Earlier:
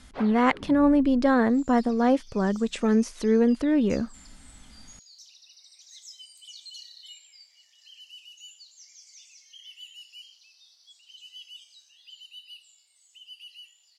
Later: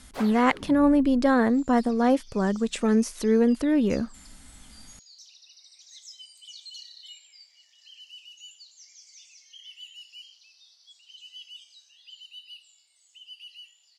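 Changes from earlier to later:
first sound: remove high-frequency loss of the air 190 metres
second sound: add low-pass filter 5,700 Hz 12 dB per octave
master: remove high-frequency loss of the air 53 metres

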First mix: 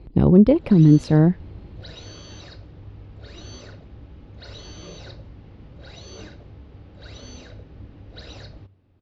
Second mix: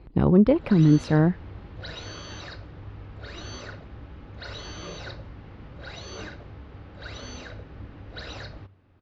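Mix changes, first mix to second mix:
speech −5.0 dB
master: add parametric band 1,400 Hz +8.5 dB 1.8 octaves

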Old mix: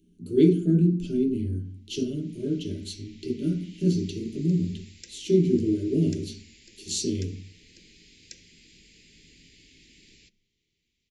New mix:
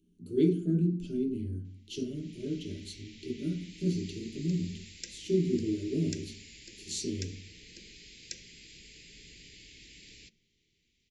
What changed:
speech −7.0 dB
background +3.5 dB

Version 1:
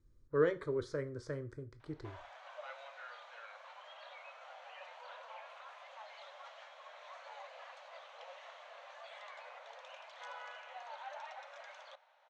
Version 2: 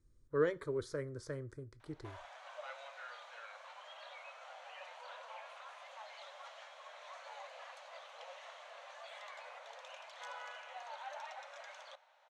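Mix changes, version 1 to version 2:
speech: send −8.0 dB
master: remove high-frequency loss of the air 78 metres

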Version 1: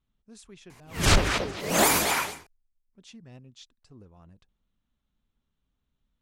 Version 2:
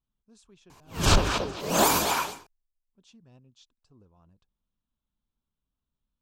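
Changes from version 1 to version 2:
speech −7.5 dB
master: add thirty-one-band graphic EQ 1,000 Hz +4 dB, 2,000 Hz −11 dB, 10,000 Hz −7 dB

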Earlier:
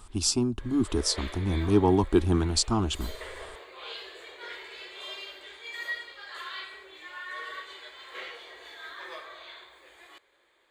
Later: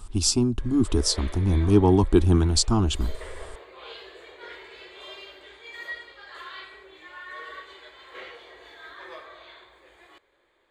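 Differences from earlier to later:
speech: add high-shelf EQ 3,000 Hz +10.5 dB
master: add spectral tilt −2 dB per octave

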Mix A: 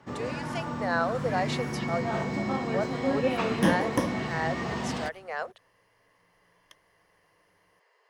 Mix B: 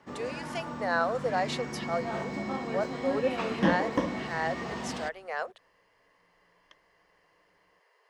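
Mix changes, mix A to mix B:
first sound −3.5 dB
second sound: add high-frequency loss of the air 170 metres
master: add parametric band 110 Hz −8.5 dB 0.77 octaves

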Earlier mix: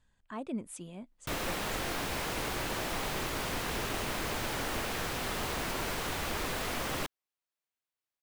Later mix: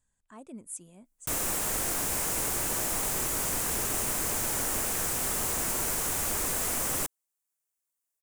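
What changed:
speech −8.0 dB
master: add high shelf with overshoot 5,600 Hz +12.5 dB, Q 1.5

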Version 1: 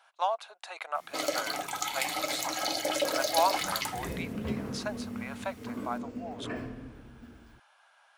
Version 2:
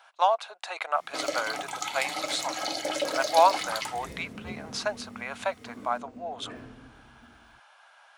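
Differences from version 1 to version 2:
speech +6.5 dB
second sound −6.5 dB
master: add parametric band 14,000 Hz −13.5 dB 0.46 octaves

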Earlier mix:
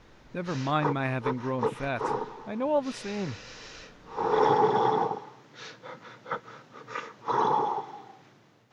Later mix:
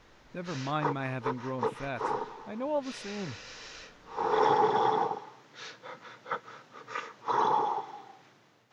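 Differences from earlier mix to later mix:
speech −5.0 dB
background: add low-shelf EQ 390 Hz −7.5 dB

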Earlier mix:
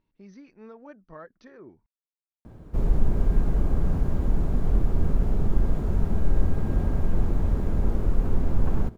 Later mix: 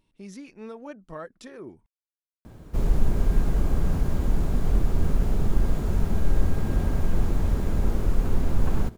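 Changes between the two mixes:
speech: remove Chebyshev low-pass with heavy ripple 6,200 Hz, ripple 6 dB
master: add high-shelf EQ 2,100 Hz +11 dB

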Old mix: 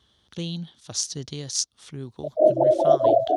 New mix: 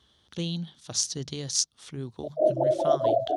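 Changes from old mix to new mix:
background −5.5 dB
master: add mains-hum notches 50/100/150/200 Hz

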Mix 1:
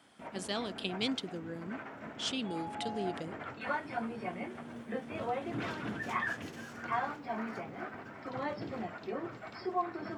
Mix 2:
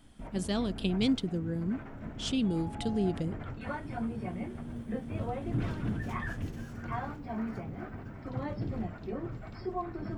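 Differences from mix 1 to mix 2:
background −4.5 dB
master: remove meter weighting curve A

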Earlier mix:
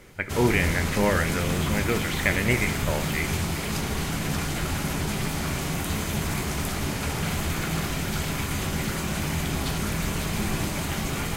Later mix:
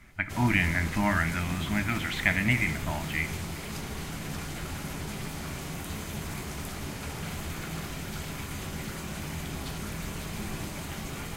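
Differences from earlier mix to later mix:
speech: add elliptic band-stop filter 320–640 Hz
background −8.5 dB

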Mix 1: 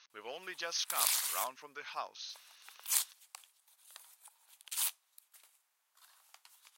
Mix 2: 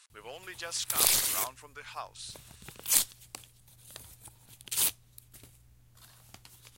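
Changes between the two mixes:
speech: remove linear-phase brick-wall low-pass 6,600 Hz
background: remove four-pole ladder high-pass 730 Hz, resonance 30%

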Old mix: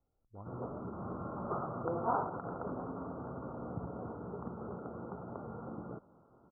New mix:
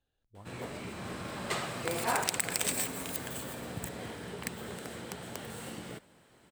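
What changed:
speech −3.0 dB
master: remove Chebyshev low-pass filter 1,400 Hz, order 8

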